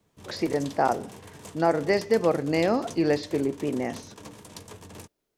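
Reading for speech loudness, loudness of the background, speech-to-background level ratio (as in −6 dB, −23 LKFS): −26.0 LKFS, −44.0 LKFS, 18.0 dB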